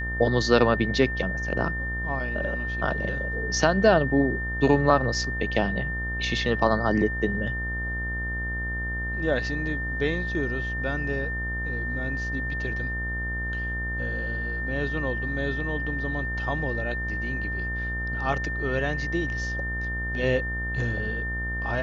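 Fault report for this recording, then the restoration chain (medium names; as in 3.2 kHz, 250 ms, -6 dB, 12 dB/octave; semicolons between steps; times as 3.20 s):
buzz 60 Hz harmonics 37 -32 dBFS
whine 1.8 kHz -30 dBFS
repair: de-hum 60 Hz, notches 37; band-stop 1.8 kHz, Q 30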